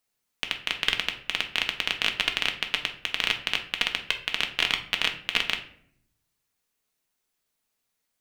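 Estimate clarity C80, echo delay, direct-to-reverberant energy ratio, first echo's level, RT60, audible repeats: 14.5 dB, no echo audible, 3.5 dB, no echo audible, 0.65 s, no echo audible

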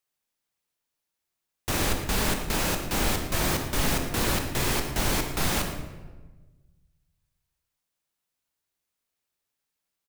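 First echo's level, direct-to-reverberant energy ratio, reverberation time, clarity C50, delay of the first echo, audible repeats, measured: −13.5 dB, 3.5 dB, 1.3 s, 5.5 dB, 113 ms, 1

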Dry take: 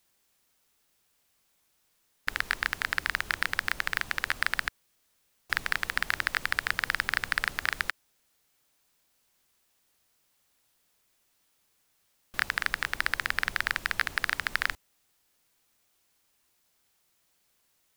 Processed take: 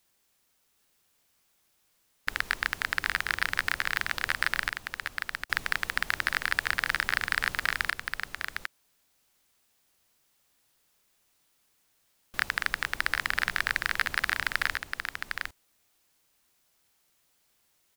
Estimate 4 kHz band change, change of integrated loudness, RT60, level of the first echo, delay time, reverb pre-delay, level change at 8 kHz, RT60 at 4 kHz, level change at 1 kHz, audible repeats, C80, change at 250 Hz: +1.0 dB, 0.0 dB, no reverb audible, −5.5 dB, 757 ms, no reverb audible, +1.0 dB, no reverb audible, +1.0 dB, 1, no reverb audible, +1.0 dB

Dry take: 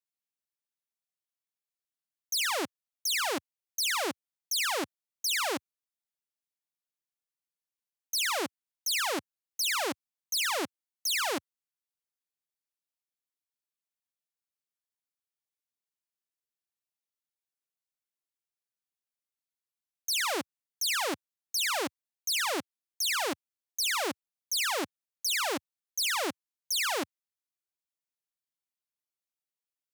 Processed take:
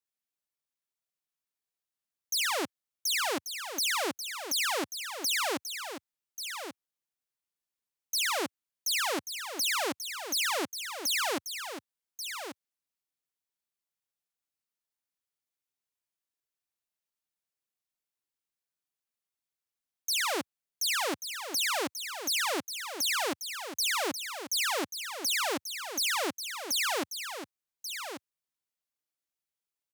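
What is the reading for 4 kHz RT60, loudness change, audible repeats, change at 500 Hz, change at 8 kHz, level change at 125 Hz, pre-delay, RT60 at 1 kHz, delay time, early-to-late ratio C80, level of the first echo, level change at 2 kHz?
no reverb audible, −0.5 dB, 1, +0.5 dB, +0.5 dB, can't be measured, no reverb audible, no reverb audible, 1,137 ms, no reverb audible, −9.0 dB, +0.5 dB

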